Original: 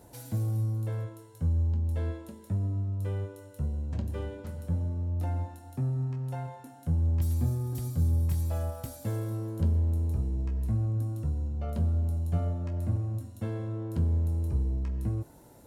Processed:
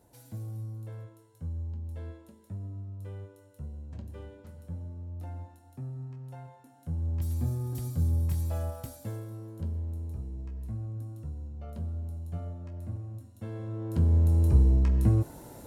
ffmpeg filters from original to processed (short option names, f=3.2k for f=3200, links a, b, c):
-af "volume=15dB,afade=t=in:st=6.65:d=1.02:silence=0.398107,afade=t=out:st=8.75:d=0.52:silence=0.446684,afade=t=in:st=13.34:d=0.45:silence=0.446684,afade=t=in:st=13.79:d=0.76:silence=0.354813"